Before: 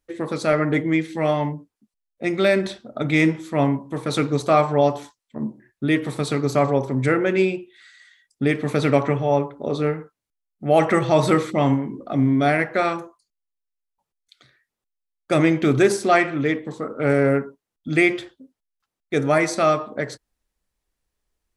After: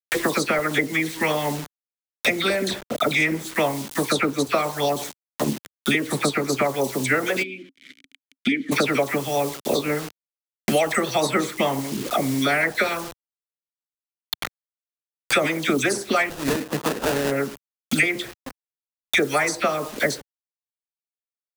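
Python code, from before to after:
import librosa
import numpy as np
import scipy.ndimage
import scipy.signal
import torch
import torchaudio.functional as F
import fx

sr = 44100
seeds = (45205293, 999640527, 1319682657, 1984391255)

y = fx.hpss(x, sr, part='harmonic', gain_db=-14)
y = fx.dispersion(y, sr, late='lows', ms=63.0, hz=1700.0)
y = fx.quant_dither(y, sr, seeds[0], bits=8, dither='none')
y = fx.vowel_filter(y, sr, vowel='i', at=(7.42, 8.71), fade=0.02)
y = fx.sample_hold(y, sr, seeds[1], rate_hz=2200.0, jitter_pct=20, at=(16.29, 17.3), fade=0.02)
y = fx.high_shelf(y, sr, hz=3500.0, db=7.0)
y = fx.band_squash(y, sr, depth_pct=100)
y = y * 10.0 ** (3.5 / 20.0)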